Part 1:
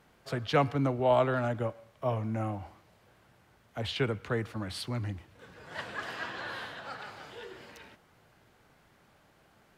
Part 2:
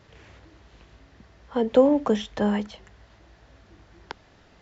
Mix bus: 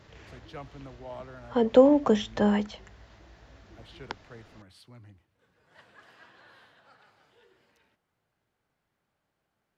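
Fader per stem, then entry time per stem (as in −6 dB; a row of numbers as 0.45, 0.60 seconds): −17.0, 0.0 decibels; 0.00, 0.00 seconds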